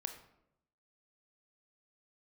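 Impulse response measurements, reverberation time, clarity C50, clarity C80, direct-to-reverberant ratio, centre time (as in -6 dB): 0.80 s, 9.0 dB, 12.0 dB, 6.0 dB, 14 ms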